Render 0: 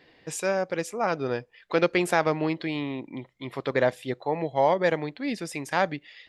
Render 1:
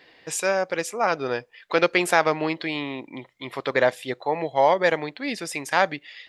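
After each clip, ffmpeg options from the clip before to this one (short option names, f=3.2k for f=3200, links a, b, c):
-af "lowshelf=f=360:g=-11,volume=6dB"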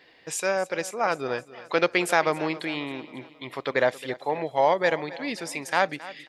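-af "aecho=1:1:270|540|810|1080:0.133|0.0667|0.0333|0.0167,volume=-2.5dB"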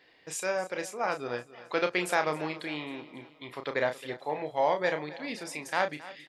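-filter_complex "[0:a]asplit=2[a][b];[b]adelay=33,volume=-7.5dB[c];[a][c]amix=inputs=2:normalize=0,volume=-6dB"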